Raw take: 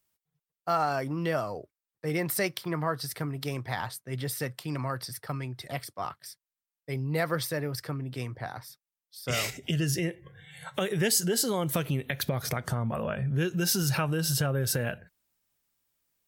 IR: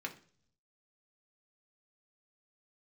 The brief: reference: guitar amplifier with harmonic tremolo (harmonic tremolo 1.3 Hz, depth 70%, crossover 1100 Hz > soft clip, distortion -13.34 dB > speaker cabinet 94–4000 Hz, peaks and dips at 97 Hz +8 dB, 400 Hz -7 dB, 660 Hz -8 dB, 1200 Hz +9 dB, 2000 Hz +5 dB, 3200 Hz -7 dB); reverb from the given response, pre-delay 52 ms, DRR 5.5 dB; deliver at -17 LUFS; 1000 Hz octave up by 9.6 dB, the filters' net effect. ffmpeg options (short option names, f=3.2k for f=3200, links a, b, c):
-filter_complex "[0:a]equalizer=f=1k:t=o:g=8,asplit=2[a][b];[1:a]atrim=start_sample=2205,adelay=52[c];[b][c]afir=irnorm=-1:irlink=0,volume=-6.5dB[d];[a][d]amix=inputs=2:normalize=0,acrossover=split=1100[e][f];[e]aeval=exprs='val(0)*(1-0.7/2+0.7/2*cos(2*PI*1.3*n/s))':c=same[g];[f]aeval=exprs='val(0)*(1-0.7/2-0.7/2*cos(2*PI*1.3*n/s))':c=same[h];[g][h]amix=inputs=2:normalize=0,asoftclip=threshold=-24dB,highpass=94,equalizer=f=97:t=q:w=4:g=8,equalizer=f=400:t=q:w=4:g=-7,equalizer=f=660:t=q:w=4:g=-8,equalizer=f=1.2k:t=q:w=4:g=9,equalizer=f=2k:t=q:w=4:g=5,equalizer=f=3.2k:t=q:w=4:g=-7,lowpass=f=4k:w=0.5412,lowpass=f=4k:w=1.3066,volume=16.5dB"